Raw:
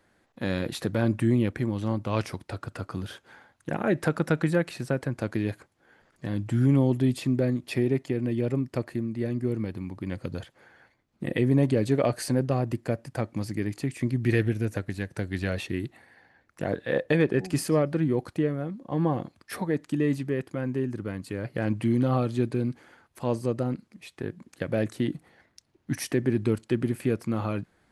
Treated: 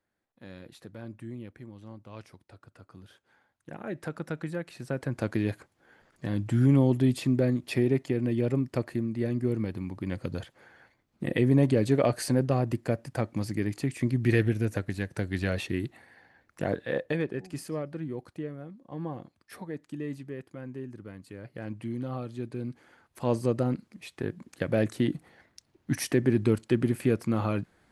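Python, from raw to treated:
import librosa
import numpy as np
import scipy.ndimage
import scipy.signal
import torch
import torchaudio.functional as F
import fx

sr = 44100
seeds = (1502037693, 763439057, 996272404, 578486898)

y = fx.gain(x, sr, db=fx.line((2.76, -17.5), (4.16, -10.0), (4.66, -10.0), (5.18, 0.0), (16.67, 0.0), (17.43, -10.5), (22.38, -10.5), (23.34, 1.0)))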